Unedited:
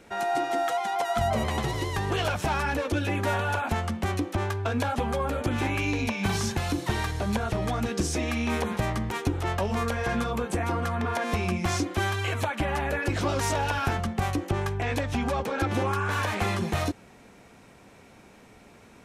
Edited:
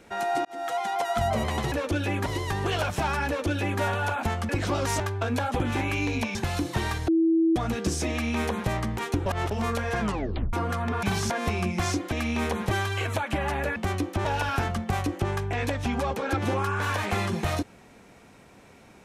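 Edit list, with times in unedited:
0.45–0.79 fade in
2.73–3.27 copy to 1.72
3.95–4.44 swap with 13.03–13.54
5.04–5.46 cut
6.21–6.48 move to 11.16
7.21–7.69 bleep 327 Hz -18 dBFS
8.23–8.82 copy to 11.98
9.39–9.64 reverse
10.14 tape stop 0.52 s

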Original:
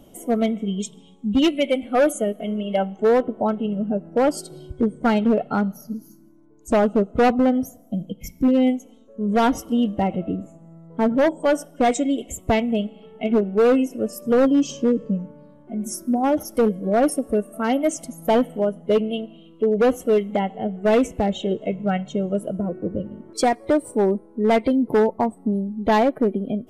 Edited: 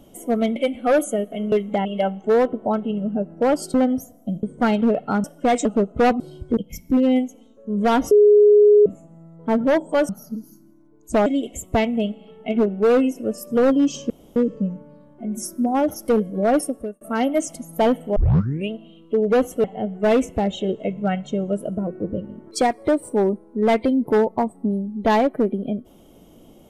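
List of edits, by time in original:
0.56–1.64 cut
4.49–4.86 swap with 7.39–8.08
5.67–6.84 swap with 11.6–12.01
9.62–10.37 bleep 416 Hz -8.5 dBFS
14.85 insert room tone 0.26 s
17.11–17.5 fade out
18.65 tape start 0.55 s
20.13–20.46 move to 2.6

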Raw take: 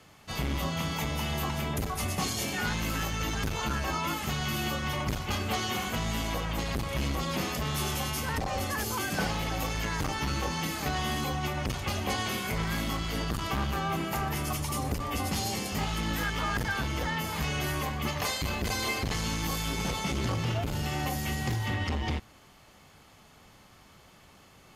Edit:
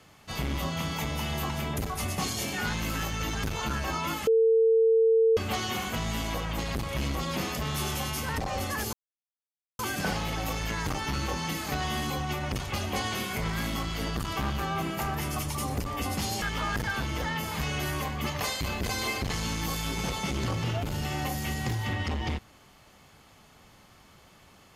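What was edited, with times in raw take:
4.27–5.37 bleep 450 Hz -18 dBFS
8.93 insert silence 0.86 s
15.56–16.23 cut

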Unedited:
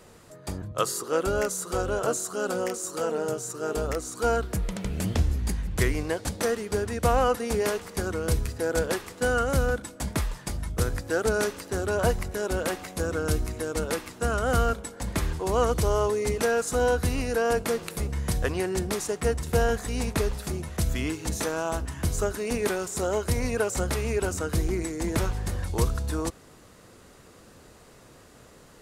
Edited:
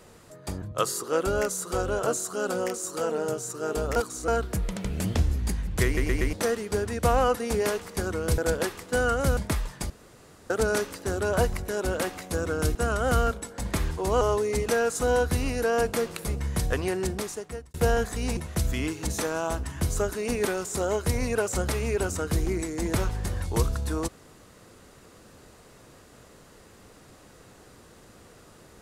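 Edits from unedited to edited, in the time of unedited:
3.96–4.28 reverse
5.85 stutter in place 0.12 s, 4 plays
8.38–8.67 cut
9.66–10.03 cut
10.56–11.16 room tone
13.41–14.17 cut
15.63–15.93 cut
18.72–19.46 fade out
20.09–20.59 cut

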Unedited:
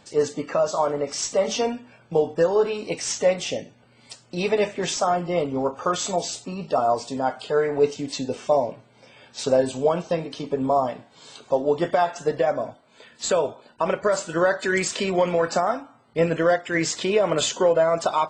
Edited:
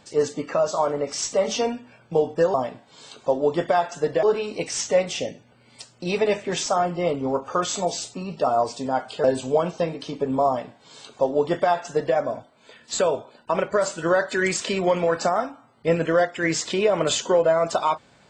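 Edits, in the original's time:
7.55–9.55 cut
10.78–12.47 copy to 2.54

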